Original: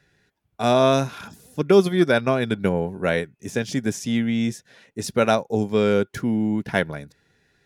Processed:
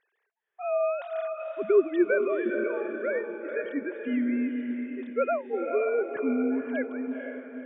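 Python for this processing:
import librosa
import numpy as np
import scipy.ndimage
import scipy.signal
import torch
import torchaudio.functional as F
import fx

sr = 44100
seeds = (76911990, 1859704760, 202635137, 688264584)

p1 = fx.sine_speech(x, sr)
p2 = p1 + fx.echo_diffused(p1, sr, ms=485, feedback_pct=45, wet_db=-5.0, dry=0)
y = p2 * 10.0 ** (-7.5 / 20.0)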